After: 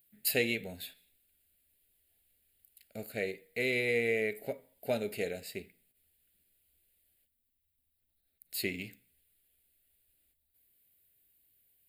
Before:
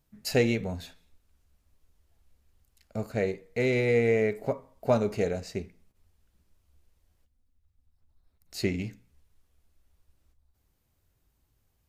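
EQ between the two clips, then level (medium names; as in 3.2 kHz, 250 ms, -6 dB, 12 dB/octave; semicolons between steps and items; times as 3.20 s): RIAA curve recording; static phaser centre 2.6 kHz, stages 4; -2.0 dB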